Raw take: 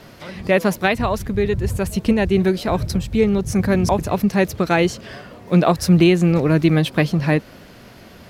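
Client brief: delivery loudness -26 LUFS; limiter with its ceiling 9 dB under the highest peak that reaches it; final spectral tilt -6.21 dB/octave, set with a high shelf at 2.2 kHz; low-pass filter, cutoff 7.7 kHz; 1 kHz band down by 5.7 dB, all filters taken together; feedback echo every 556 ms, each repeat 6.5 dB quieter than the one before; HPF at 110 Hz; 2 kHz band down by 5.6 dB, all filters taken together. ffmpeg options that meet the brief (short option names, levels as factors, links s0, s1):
-af "highpass=110,lowpass=7700,equalizer=f=1000:t=o:g=-7.5,equalizer=f=2000:t=o:g=-7.5,highshelf=f=2200:g=4.5,alimiter=limit=0.237:level=0:latency=1,aecho=1:1:556|1112|1668|2224|2780|3336:0.473|0.222|0.105|0.0491|0.0231|0.0109,volume=0.668"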